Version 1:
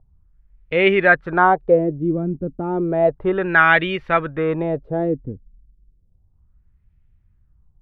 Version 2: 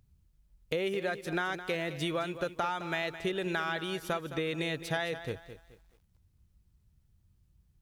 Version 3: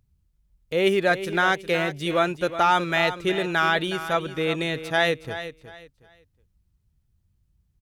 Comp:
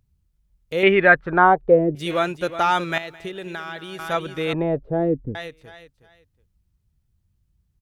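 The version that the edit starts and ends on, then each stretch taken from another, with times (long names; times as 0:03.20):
3
0:00.83–0:01.95: punch in from 1
0:02.98–0:03.99: punch in from 2
0:04.53–0:05.35: punch in from 1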